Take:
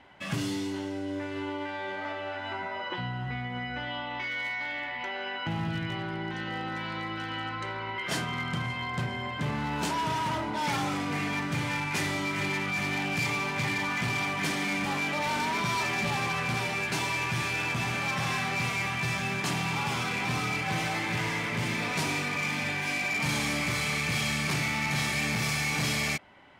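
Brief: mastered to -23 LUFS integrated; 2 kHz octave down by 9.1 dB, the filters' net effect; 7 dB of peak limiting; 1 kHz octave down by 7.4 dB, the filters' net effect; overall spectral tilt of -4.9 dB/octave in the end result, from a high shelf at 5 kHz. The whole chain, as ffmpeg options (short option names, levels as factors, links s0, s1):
-af "equalizer=f=1000:t=o:g=-7,equalizer=f=2000:t=o:g=-8.5,highshelf=f=5000:g=-6,volume=4.73,alimiter=limit=0.188:level=0:latency=1"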